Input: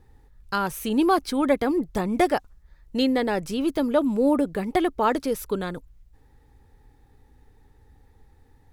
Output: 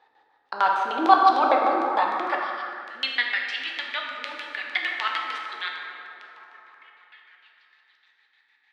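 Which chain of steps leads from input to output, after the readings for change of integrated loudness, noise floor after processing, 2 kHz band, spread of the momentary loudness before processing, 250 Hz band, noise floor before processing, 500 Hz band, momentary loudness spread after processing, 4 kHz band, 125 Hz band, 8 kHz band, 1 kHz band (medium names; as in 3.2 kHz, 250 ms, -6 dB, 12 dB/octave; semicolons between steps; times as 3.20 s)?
0.0 dB, -66 dBFS, +7.5 dB, 8 LU, -12.5 dB, -57 dBFS, -6.5 dB, 16 LU, +5.5 dB, under -25 dB, under -10 dB, +6.0 dB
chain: low-pass 9.2 kHz; spectral replace 2.33–2.60 s, 2.9–5.9 kHz before; peaking EQ 1.5 kHz +8 dB 2.7 oct; repeats whose band climbs or falls 339 ms, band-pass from 190 Hz, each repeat 0.7 oct, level -10.5 dB; LFO low-pass square 6.6 Hz 300–3800 Hz; plate-style reverb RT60 3.2 s, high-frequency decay 0.4×, DRR -1.5 dB; high-pass sweep 710 Hz -> 2.1 kHz, 1.73–3.45 s; trim -5.5 dB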